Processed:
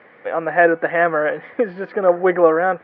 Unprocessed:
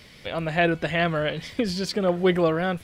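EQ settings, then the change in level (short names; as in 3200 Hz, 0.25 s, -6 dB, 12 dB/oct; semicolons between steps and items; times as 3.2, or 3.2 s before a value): air absorption 57 m; speaker cabinet 300–2000 Hz, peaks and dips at 310 Hz +4 dB, 500 Hz +8 dB, 780 Hz +9 dB, 1200 Hz +7 dB, 1700 Hz +8 dB; +2.5 dB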